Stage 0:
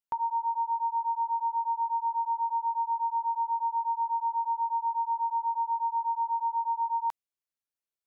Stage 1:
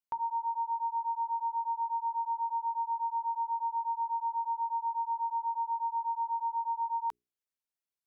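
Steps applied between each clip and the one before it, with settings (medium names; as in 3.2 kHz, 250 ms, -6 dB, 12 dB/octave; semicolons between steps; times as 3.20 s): hum notches 60/120/180/240/300/360/420 Hz; trim -3.5 dB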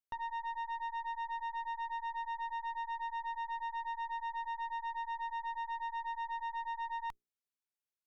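valve stage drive 33 dB, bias 0.75; trim -1.5 dB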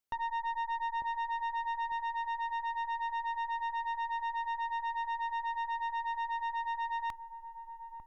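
feedback echo behind a low-pass 898 ms, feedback 33%, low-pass 640 Hz, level -4 dB; trim +4.5 dB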